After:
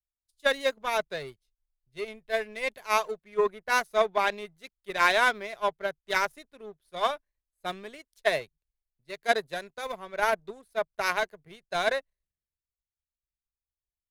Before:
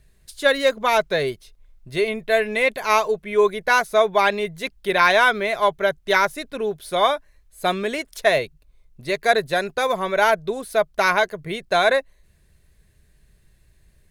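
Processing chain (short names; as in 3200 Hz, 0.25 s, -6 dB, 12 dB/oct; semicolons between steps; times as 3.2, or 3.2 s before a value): power-law curve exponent 1.4; three-band expander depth 70%; gain -6 dB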